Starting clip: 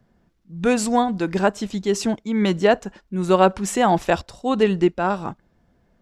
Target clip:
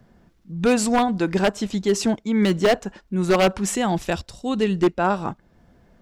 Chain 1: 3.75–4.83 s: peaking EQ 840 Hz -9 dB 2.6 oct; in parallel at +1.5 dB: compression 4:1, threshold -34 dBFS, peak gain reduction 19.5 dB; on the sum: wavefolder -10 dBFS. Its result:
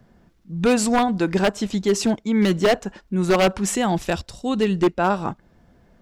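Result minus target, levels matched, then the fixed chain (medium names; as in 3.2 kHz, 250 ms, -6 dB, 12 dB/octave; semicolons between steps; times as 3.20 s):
compression: peak gain reduction -5 dB
3.75–4.83 s: peaking EQ 840 Hz -9 dB 2.6 oct; in parallel at +1.5 dB: compression 4:1, threshold -41 dBFS, peak gain reduction 25 dB; on the sum: wavefolder -10 dBFS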